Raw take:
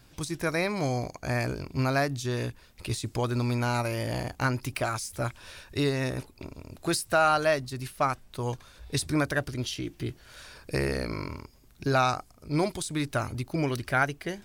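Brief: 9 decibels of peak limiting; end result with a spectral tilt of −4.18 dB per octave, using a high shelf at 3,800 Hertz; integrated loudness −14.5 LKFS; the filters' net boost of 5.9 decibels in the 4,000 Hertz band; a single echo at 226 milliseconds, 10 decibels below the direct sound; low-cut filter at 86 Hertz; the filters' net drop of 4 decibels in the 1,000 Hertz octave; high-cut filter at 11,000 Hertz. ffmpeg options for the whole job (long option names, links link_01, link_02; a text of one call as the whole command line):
ffmpeg -i in.wav -af "highpass=86,lowpass=11000,equalizer=frequency=1000:width_type=o:gain=-7,highshelf=frequency=3800:gain=6,equalizer=frequency=4000:width_type=o:gain=3.5,alimiter=limit=-19.5dB:level=0:latency=1,aecho=1:1:226:0.316,volume=17dB" out.wav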